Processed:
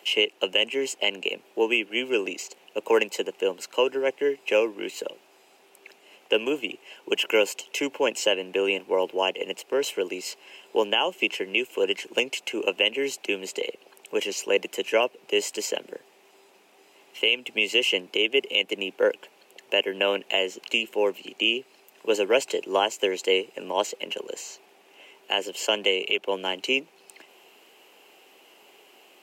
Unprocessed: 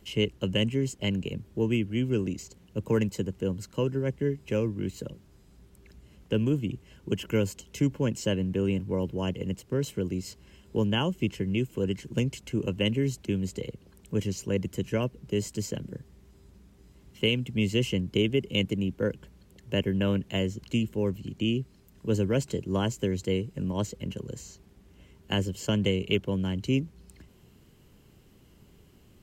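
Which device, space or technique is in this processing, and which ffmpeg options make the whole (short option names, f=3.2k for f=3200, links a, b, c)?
laptop speaker: -af "highpass=f=390:w=0.5412,highpass=f=390:w=1.3066,equalizer=f=780:t=o:w=0.6:g=9,equalizer=f=2.6k:t=o:w=0.56:g=10,alimiter=limit=-16.5dB:level=0:latency=1:release=207,volume=7dB"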